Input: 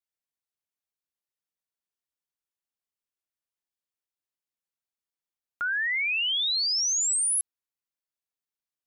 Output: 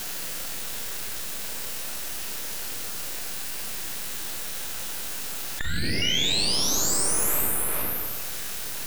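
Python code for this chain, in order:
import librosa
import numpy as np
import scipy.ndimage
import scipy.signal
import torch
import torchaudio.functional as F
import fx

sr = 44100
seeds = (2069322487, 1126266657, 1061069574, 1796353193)

p1 = fx.quant_dither(x, sr, seeds[0], bits=8, dither='triangular')
p2 = x + (p1 * 10.0 ** (-4.0 / 20.0))
p3 = fx.rev_schroeder(p2, sr, rt60_s=0.92, comb_ms=33, drr_db=-2.0)
p4 = np.maximum(p3, 0.0)
p5 = p4 + fx.echo_single(p4, sr, ms=410, db=-8.5, dry=0)
p6 = fx.formant_shift(p5, sr, semitones=4)
p7 = fx.env_flatten(p6, sr, amount_pct=70)
y = p7 * 10.0 ** (-4.0 / 20.0)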